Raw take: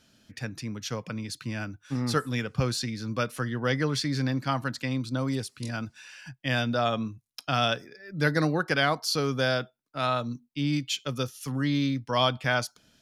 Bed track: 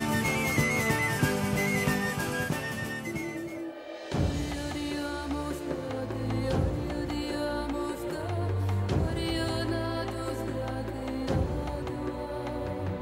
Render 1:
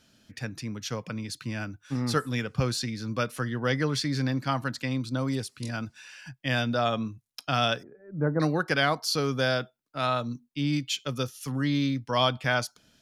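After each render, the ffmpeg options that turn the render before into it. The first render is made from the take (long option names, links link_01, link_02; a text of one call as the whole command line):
ffmpeg -i in.wav -filter_complex "[0:a]asettb=1/sr,asplit=3[link_01][link_02][link_03];[link_01]atrim=end=7.834[link_04];[link_02]atrim=start=7.83:end=8.4,asetpts=PTS-STARTPTS,afade=type=in:duration=0.004:curve=qsin,afade=type=out:start_time=0.566:duration=0.004:curve=qsin,lowpass=frequency=1100:width=0.5412,lowpass=frequency=1100:width=1.3066[link_05];[link_03]atrim=start=8.396[link_06];[link_04][link_05]acrossfade=duration=0.004:curve1=hsin:curve2=qsin[link_07];[link_07][link_06]acrossfade=duration=0.004:curve1=qsin:curve2=hsin" out.wav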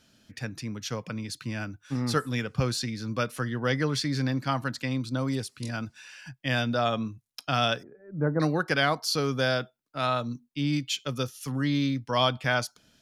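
ffmpeg -i in.wav -af anull out.wav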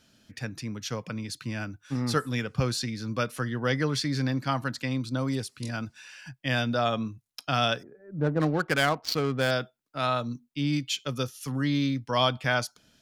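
ffmpeg -i in.wav -filter_complex "[0:a]asettb=1/sr,asplit=3[link_01][link_02][link_03];[link_01]atrim=end=8.194[link_04];[link_02]atrim=start=8.19:end=9.51,asetpts=PTS-STARTPTS,afade=type=in:duration=0.004:curve=qsin,afade=type=out:start_time=1.316:duration=0.004:curve=qsin,adynamicsmooth=sensitivity=5:basefreq=810[link_05];[link_03]atrim=start=9.506[link_06];[link_04][link_05]acrossfade=duration=0.004:curve1=hsin:curve2=qsin[link_07];[link_07][link_06]acrossfade=duration=0.004:curve1=qsin:curve2=hsin" out.wav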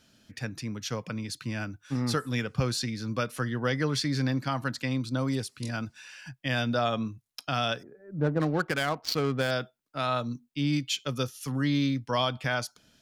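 ffmpeg -i in.wav -af "alimiter=limit=-16dB:level=0:latency=1:release=156" out.wav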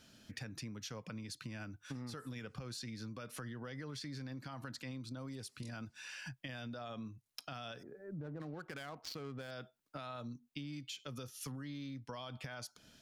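ffmpeg -i in.wav -af "alimiter=level_in=1.5dB:limit=-24dB:level=0:latency=1:release=62,volume=-1.5dB,acompressor=threshold=-43dB:ratio=6" out.wav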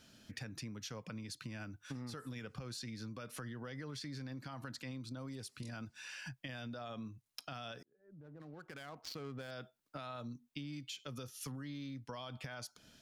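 ffmpeg -i in.wav -filter_complex "[0:a]asplit=2[link_01][link_02];[link_01]atrim=end=7.83,asetpts=PTS-STARTPTS,afade=type=out:start_time=7.826:duration=0.004:curve=hsin[link_03];[link_02]atrim=start=7.83,asetpts=PTS-STARTPTS,afade=type=in:duration=1.38[link_04];[link_03][link_04]concat=n=2:v=0:a=1" out.wav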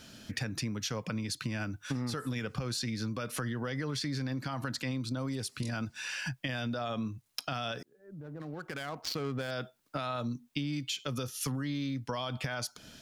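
ffmpeg -i in.wav -af "volume=10.5dB" out.wav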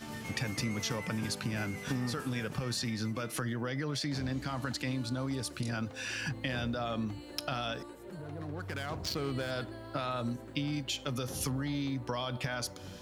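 ffmpeg -i in.wav -i bed.wav -filter_complex "[1:a]volume=-15dB[link_01];[0:a][link_01]amix=inputs=2:normalize=0" out.wav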